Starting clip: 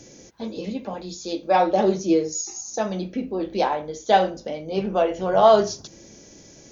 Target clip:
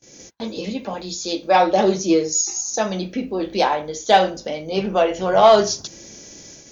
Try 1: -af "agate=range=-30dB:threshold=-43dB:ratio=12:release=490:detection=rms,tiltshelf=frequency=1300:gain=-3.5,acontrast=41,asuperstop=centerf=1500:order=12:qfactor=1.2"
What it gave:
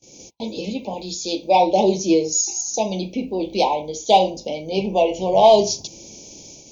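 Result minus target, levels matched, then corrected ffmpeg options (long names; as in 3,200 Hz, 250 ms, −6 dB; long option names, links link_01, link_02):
2,000 Hz band −7.0 dB
-af "agate=range=-30dB:threshold=-43dB:ratio=12:release=490:detection=rms,tiltshelf=frequency=1300:gain=-3.5,acontrast=41"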